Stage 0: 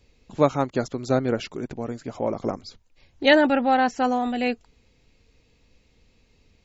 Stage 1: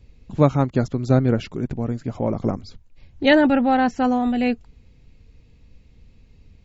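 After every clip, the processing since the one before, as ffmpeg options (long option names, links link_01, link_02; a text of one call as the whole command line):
ffmpeg -i in.wav -af "bass=frequency=250:gain=12,treble=frequency=4000:gain=-4" out.wav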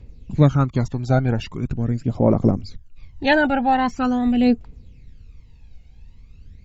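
ffmpeg -i in.wav -af "aphaser=in_gain=1:out_gain=1:delay=1.4:decay=0.63:speed=0.43:type=triangular,volume=-1dB" out.wav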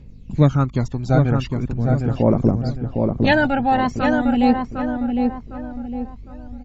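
ffmpeg -i in.wav -filter_complex "[0:a]aeval=exprs='val(0)+0.00891*(sin(2*PI*50*n/s)+sin(2*PI*2*50*n/s)/2+sin(2*PI*3*50*n/s)/3+sin(2*PI*4*50*n/s)/4+sin(2*PI*5*50*n/s)/5)':channel_layout=same,asplit=2[link_01][link_02];[link_02]adelay=757,lowpass=frequency=1500:poles=1,volume=-3.5dB,asplit=2[link_03][link_04];[link_04]adelay=757,lowpass=frequency=1500:poles=1,volume=0.41,asplit=2[link_05][link_06];[link_06]adelay=757,lowpass=frequency=1500:poles=1,volume=0.41,asplit=2[link_07][link_08];[link_08]adelay=757,lowpass=frequency=1500:poles=1,volume=0.41,asplit=2[link_09][link_10];[link_10]adelay=757,lowpass=frequency=1500:poles=1,volume=0.41[link_11];[link_03][link_05][link_07][link_09][link_11]amix=inputs=5:normalize=0[link_12];[link_01][link_12]amix=inputs=2:normalize=0" out.wav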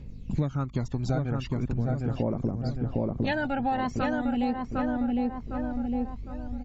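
ffmpeg -i in.wav -af "acompressor=threshold=-24dB:ratio=10" out.wav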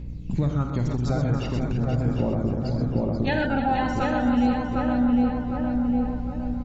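ffmpeg -i in.wav -filter_complex "[0:a]aeval=exprs='val(0)+0.01*(sin(2*PI*60*n/s)+sin(2*PI*2*60*n/s)/2+sin(2*PI*3*60*n/s)/3+sin(2*PI*4*60*n/s)/4+sin(2*PI*5*60*n/s)/5)':channel_layout=same,asplit=2[link_01][link_02];[link_02]aecho=0:1:49|82|127|310|483:0.316|0.299|0.447|0.266|0.422[link_03];[link_01][link_03]amix=inputs=2:normalize=0,volume=2dB" out.wav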